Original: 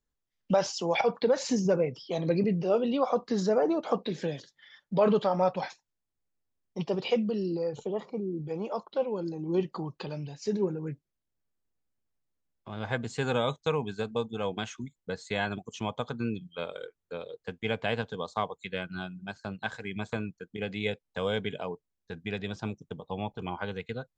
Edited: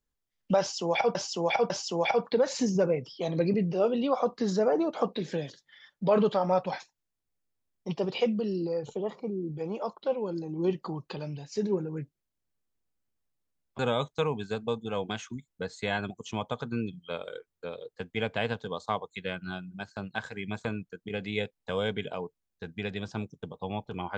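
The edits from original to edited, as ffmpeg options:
ffmpeg -i in.wav -filter_complex "[0:a]asplit=4[link_01][link_02][link_03][link_04];[link_01]atrim=end=1.152[link_05];[link_02]atrim=start=0.598:end=1.152[link_06];[link_03]atrim=start=0.598:end=12.692[link_07];[link_04]atrim=start=13.268[link_08];[link_05][link_06]acrossfade=duration=0.004:curve1=hsin:curve2=hsin[link_09];[link_09][link_07]acrossfade=duration=0.004:curve1=hsin:curve2=hsin[link_10];[link_10][link_08]acrossfade=duration=0.004:curve1=hsin:curve2=hsin" out.wav

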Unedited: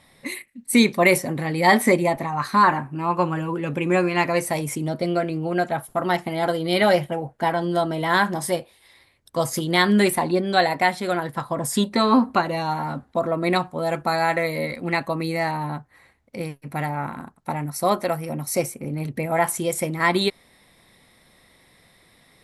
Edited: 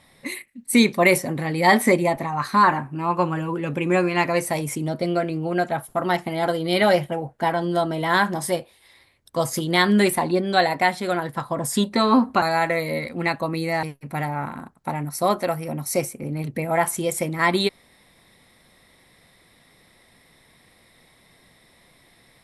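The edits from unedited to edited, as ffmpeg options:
ffmpeg -i in.wav -filter_complex "[0:a]asplit=3[link_01][link_02][link_03];[link_01]atrim=end=12.422[link_04];[link_02]atrim=start=14.088:end=15.502[link_05];[link_03]atrim=start=16.438[link_06];[link_04][link_05]acrossfade=duration=0.004:curve1=hsin:curve2=hsin[link_07];[link_07][link_06]acrossfade=duration=0.004:curve1=hsin:curve2=hsin" out.wav

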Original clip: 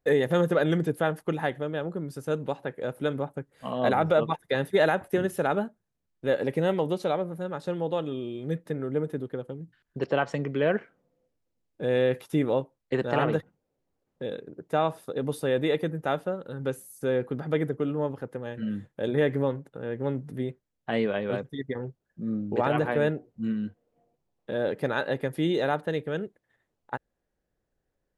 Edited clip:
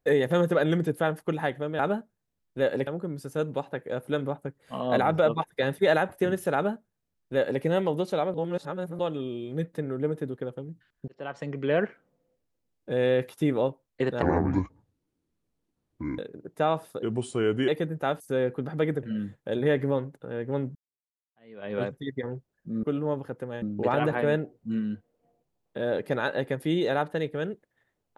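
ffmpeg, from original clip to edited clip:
ffmpeg -i in.wav -filter_complex "[0:a]asplit=15[link_01][link_02][link_03][link_04][link_05][link_06][link_07][link_08][link_09][link_10][link_11][link_12][link_13][link_14][link_15];[link_01]atrim=end=1.792[link_16];[link_02]atrim=start=5.458:end=6.542[link_17];[link_03]atrim=start=1.788:end=7.262[link_18];[link_04]atrim=start=7.258:end=7.912,asetpts=PTS-STARTPTS,areverse[link_19];[link_05]atrim=start=7.908:end=10,asetpts=PTS-STARTPTS,afade=type=out:start_time=2.088:duration=0.004:curve=hsin[link_20];[link_06]atrim=start=10:end=13.144,asetpts=PTS-STARTPTS,afade=type=in:duration=0.65[link_21];[link_07]atrim=start=13.14:end=14.32,asetpts=PTS-STARTPTS,asetrate=26460,aresample=44100[link_22];[link_08]atrim=start=14.316:end=15.164[link_23];[link_09]atrim=start=15.16:end=15.71,asetpts=PTS-STARTPTS,asetrate=37044,aresample=44100[link_24];[link_10]atrim=start=15.706:end=16.232[link_25];[link_11]atrim=start=16.928:end=17.762[link_26];[link_12]atrim=start=18.548:end=20.27,asetpts=PTS-STARTPTS,afade=type=out:start_time=1.718:duration=0.004:curve=hsin[link_27];[link_13]atrim=start=20.27:end=22.352,asetpts=PTS-STARTPTS,afade=type=in:duration=0.98:curve=exp[link_28];[link_14]atrim=start=17.758:end=18.552[link_29];[link_15]atrim=start=22.348[link_30];[link_16][link_17]acrossfade=duration=0.004:curve1=hsin:curve2=hsin[link_31];[link_31][link_18]acrossfade=duration=0.004:curve1=hsin:curve2=hsin[link_32];[link_32][link_19]acrossfade=duration=0.004:curve1=hsin:curve2=hsin[link_33];[link_20][link_21]concat=n=2:v=0:a=1[link_34];[link_33][link_34]acrossfade=duration=0.004:curve1=hsin:curve2=hsin[link_35];[link_35][link_22]acrossfade=duration=0.004:curve1=hsin:curve2=hsin[link_36];[link_36][link_23]acrossfade=duration=0.004:curve1=hsin:curve2=hsin[link_37];[link_37][link_24]acrossfade=duration=0.004:curve1=hsin:curve2=hsin[link_38];[link_38][link_25]acrossfade=duration=0.004:curve1=hsin:curve2=hsin[link_39];[link_39][link_26]acrossfade=duration=0.004:curve1=hsin:curve2=hsin[link_40];[link_27][link_28]concat=n=2:v=0:a=1[link_41];[link_40][link_41]acrossfade=duration=0.004:curve1=hsin:curve2=hsin[link_42];[link_42][link_29]acrossfade=duration=0.004:curve1=hsin:curve2=hsin[link_43];[link_43][link_30]acrossfade=duration=0.004:curve1=hsin:curve2=hsin" out.wav

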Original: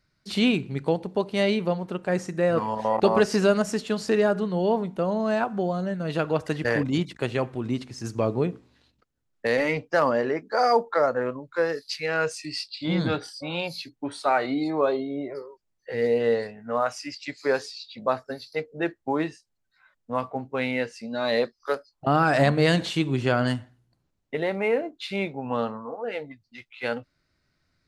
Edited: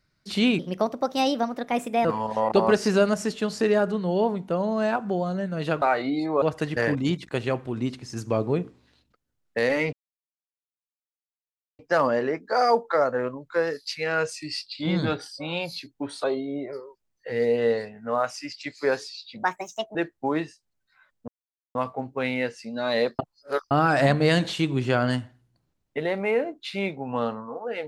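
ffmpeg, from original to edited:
ffmpeg -i in.wav -filter_complex "[0:a]asplit=12[link_01][link_02][link_03][link_04][link_05][link_06][link_07][link_08][link_09][link_10][link_11][link_12];[link_01]atrim=end=0.594[link_13];[link_02]atrim=start=0.59:end=2.53,asetpts=PTS-STARTPTS,asetrate=58653,aresample=44100,atrim=end_sample=64326,asetpts=PTS-STARTPTS[link_14];[link_03]atrim=start=2.526:end=6.302[link_15];[link_04]atrim=start=14.258:end=14.862[link_16];[link_05]atrim=start=6.298:end=9.81,asetpts=PTS-STARTPTS,afade=type=out:start_time=3.508:duration=0.004:curve=hsin,apad=pad_dur=1.86[link_17];[link_06]atrim=start=9.81:end=14.262,asetpts=PTS-STARTPTS,afade=type=in:duration=0.004:curve=hsin[link_18];[link_07]atrim=start=14.858:end=18.054[link_19];[link_08]atrim=start=18.05:end=18.79,asetpts=PTS-STARTPTS,asetrate=62622,aresample=44100[link_20];[link_09]atrim=start=18.786:end=20.12,asetpts=PTS-STARTPTS,afade=type=out:start_time=1.33:duration=0.004:curve=hsin,apad=pad_dur=0.47[link_21];[link_10]atrim=start=20.12:end=21.562,asetpts=PTS-STARTPTS,afade=type=in:duration=0.004:curve=hsin[link_22];[link_11]atrim=start=21.558:end=22.082,asetpts=PTS-STARTPTS,areverse[link_23];[link_12]atrim=start=22.078[link_24];[link_13][link_14]acrossfade=duration=0.004:curve1=hsin:curve2=hsin[link_25];[link_25][link_15]acrossfade=duration=0.004:curve1=hsin:curve2=hsin[link_26];[link_26][link_16]acrossfade=duration=0.004:curve1=hsin:curve2=hsin[link_27];[link_17][link_18]concat=n=2:v=0:a=1[link_28];[link_27][link_28]acrossfade=duration=0.004:curve1=hsin:curve2=hsin[link_29];[link_29][link_19]acrossfade=duration=0.004:curve1=hsin:curve2=hsin[link_30];[link_30][link_20]acrossfade=duration=0.004:curve1=hsin:curve2=hsin[link_31];[link_21][link_22]concat=n=2:v=0:a=1[link_32];[link_31][link_32]acrossfade=duration=0.004:curve1=hsin:curve2=hsin[link_33];[link_33][link_23]acrossfade=duration=0.004:curve1=hsin:curve2=hsin[link_34];[link_34][link_24]acrossfade=duration=0.004:curve1=hsin:curve2=hsin" out.wav

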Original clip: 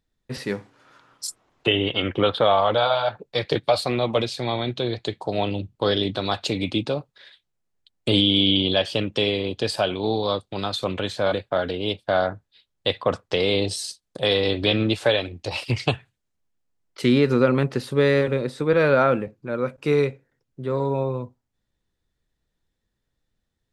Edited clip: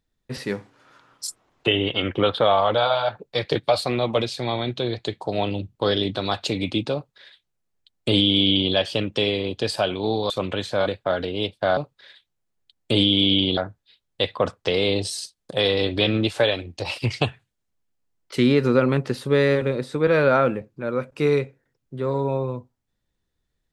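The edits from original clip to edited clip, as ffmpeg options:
ffmpeg -i in.wav -filter_complex "[0:a]asplit=4[link_01][link_02][link_03][link_04];[link_01]atrim=end=10.302[link_05];[link_02]atrim=start=10.758:end=12.232[link_06];[link_03]atrim=start=6.938:end=8.742[link_07];[link_04]atrim=start=12.228[link_08];[link_05][link_06]acrossfade=duration=0.004:curve1=hsin:curve2=hsin[link_09];[link_09][link_07]acrossfade=duration=0.004:curve1=hsin:curve2=hsin[link_10];[link_10][link_08]acrossfade=duration=0.004:curve1=hsin:curve2=hsin" out.wav

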